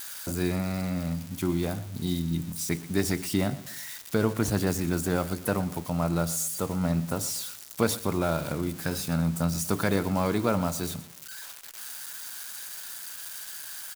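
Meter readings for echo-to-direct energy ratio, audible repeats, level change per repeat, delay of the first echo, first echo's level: −16.5 dB, 3, −8.0 dB, 120 ms, −17.0 dB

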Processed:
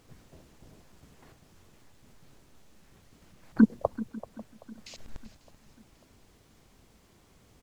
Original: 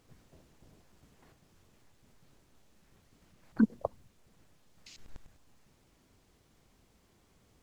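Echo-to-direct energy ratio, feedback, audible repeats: −14.5 dB, repeats not evenly spaced, 5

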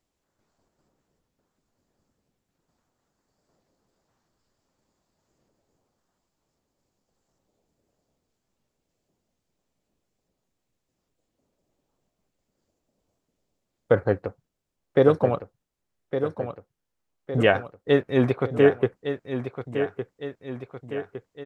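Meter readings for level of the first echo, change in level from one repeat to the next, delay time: −9.0 dB, −5.5 dB, 1,160 ms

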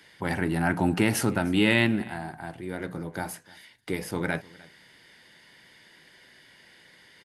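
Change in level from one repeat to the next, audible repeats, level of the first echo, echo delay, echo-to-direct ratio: repeats not evenly spaced, 1, −23.0 dB, 303 ms, −23.0 dB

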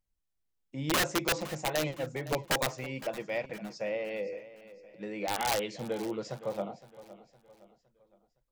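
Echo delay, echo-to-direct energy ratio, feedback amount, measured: 513 ms, −15.5 dB, 42%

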